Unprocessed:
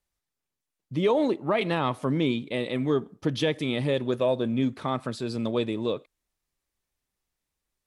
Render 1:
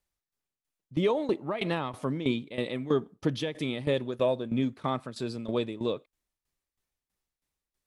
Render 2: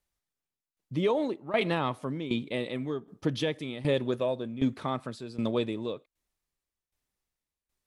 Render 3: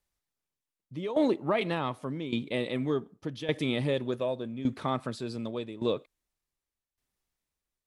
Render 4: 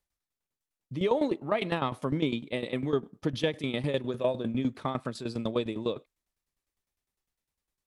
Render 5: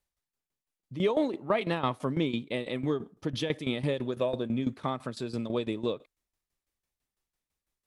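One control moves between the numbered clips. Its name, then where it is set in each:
tremolo, rate: 3.1 Hz, 1.3 Hz, 0.86 Hz, 9.9 Hz, 6 Hz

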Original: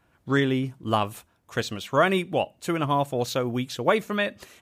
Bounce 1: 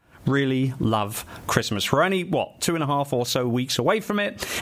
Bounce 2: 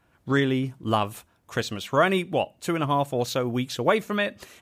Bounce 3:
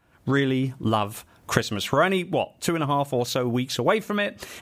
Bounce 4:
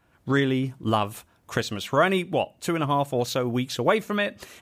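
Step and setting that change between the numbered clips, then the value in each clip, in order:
recorder AGC, rising by: 90 dB/s, 5.8 dB/s, 37 dB/s, 15 dB/s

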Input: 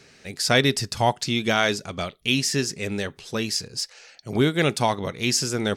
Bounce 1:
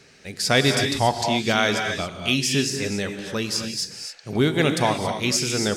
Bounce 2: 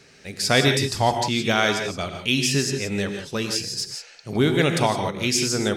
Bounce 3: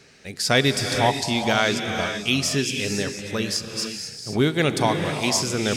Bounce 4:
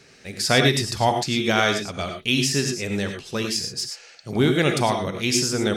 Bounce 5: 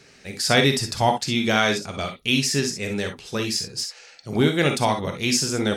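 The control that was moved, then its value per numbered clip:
gated-style reverb, gate: 300 ms, 190 ms, 530 ms, 130 ms, 80 ms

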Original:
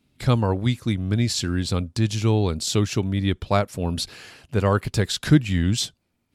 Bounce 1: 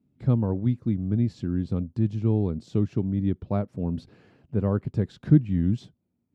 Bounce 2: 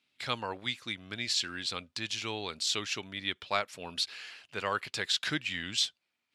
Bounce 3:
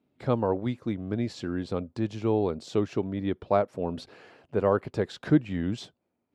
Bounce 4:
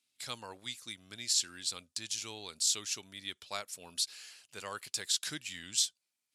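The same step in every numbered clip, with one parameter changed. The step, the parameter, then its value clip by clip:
band-pass filter, frequency: 190 Hz, 2.8 kHz, 520 Hz, 7.9 kHz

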